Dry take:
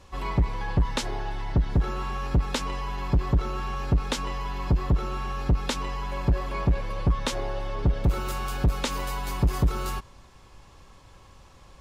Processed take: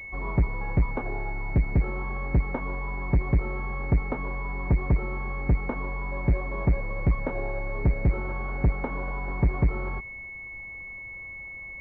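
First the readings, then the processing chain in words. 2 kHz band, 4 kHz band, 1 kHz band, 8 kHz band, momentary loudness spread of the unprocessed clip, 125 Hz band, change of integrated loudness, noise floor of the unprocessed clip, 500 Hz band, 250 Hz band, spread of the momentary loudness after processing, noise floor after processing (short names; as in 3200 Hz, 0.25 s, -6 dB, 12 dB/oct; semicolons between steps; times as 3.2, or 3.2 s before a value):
+4.5 dB, under -25 dB, -4.0 dB, under -35 dB, 7 LU, 0.0 dB, -1.0 dB, -52 dBFS, 0.0 dB, 0.0 dB, 12 LU, -40 dBFS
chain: pulse-width modulation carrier 2200 Hz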